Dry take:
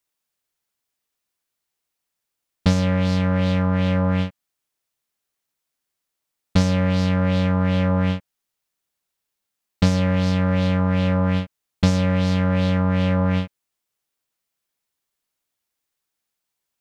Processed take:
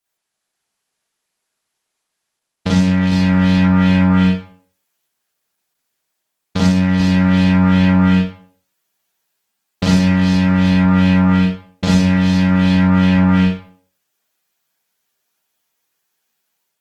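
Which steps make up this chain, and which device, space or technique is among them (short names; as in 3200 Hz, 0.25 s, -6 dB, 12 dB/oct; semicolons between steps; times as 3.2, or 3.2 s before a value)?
far-field microphone of a smart speaker (reverb RT60 0.45 s, pre-delay 36 ms, DRR -7 dB; HPF 140 Hz 6 dB/oct; AGC gain up to 3 dB; Opus 16 kbps 48000 Hz)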